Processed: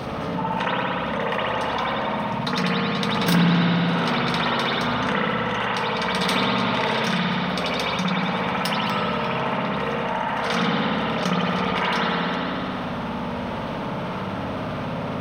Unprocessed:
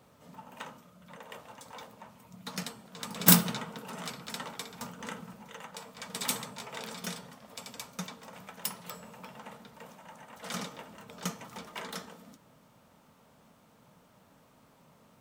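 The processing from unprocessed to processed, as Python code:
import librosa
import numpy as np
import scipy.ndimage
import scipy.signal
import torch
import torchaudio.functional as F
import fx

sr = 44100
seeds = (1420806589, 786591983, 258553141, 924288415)

y = scipy.signal.savgol_filter(x, 15, 4, mode='constant')
y = fx.rev_spring(y, sr, rt60_s=1.6, pass_ms=(58,), chirp_ms=50, drr_db=-8.0)
y = fx.env_flatten(y, sr, amount_pct=70)
y = y * 10.0 ** (-3.0 / 20.0)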